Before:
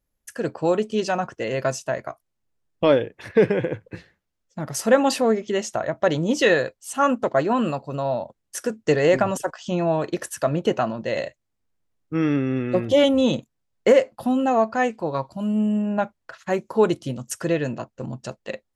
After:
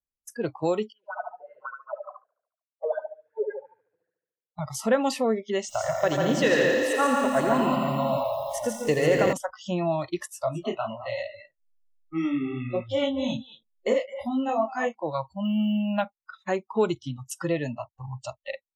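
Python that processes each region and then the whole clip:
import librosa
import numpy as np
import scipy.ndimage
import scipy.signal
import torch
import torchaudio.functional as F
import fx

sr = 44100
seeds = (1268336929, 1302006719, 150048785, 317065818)

y = fx.chain(x, sr, fx.wah_lfo(hz=5.5, low_hz=440.0, high_hz=1600.0, q=9.6),
    fx.echo_feedback(ms=72, feedback_pct=55, wet_db=-4), at=(0.92, 4.59))
y = fx.chain(y, sr, fx.echo_multitap(ms=(84, 119, 143, 193, 373, 476), db=(-17.5, -18.0, -4.0, -10.0, -20.0, -9.5)),
    fx.echo_crushed(ms=85, feedback_pct=80, bits=7, wet_db=-6.5), at=(5.6, 9.33))
y = fx.chain(y, sr, fx.doubler(ms=18.0, db=-14.0),
    fx.echo_single(ms=211, db=-11.5),
    fx.detune_double(cents=32), at=(10.27, 14.95))
y = fx.chain(y, sr, fx.peak_eq(hz=3200.0, db=13.0, octaves=1.0),
    fx.resample_linear(factor=2), at=(15.45, 16.02))
y = fx.noise_reduce_blind(y, sr, reduce_db=29)
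y = fx.band_squash(y, sr, depth_pct=40)
y = y * 10.0 ** (-4.0 / 20.0)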